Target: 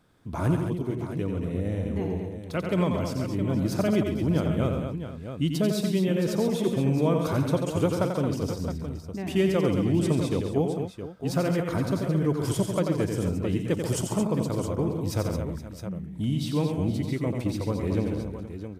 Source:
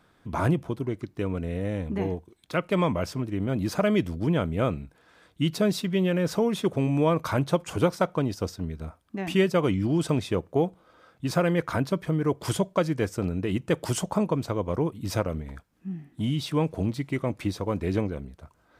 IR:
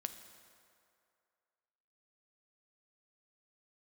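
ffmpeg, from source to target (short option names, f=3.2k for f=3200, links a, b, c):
-af "equalizer=f=1.5k:w=0.4:g=-6.5,aecho=1:1:89|138|221|471|666:0.501|0.316|0.398|0.158|0.316"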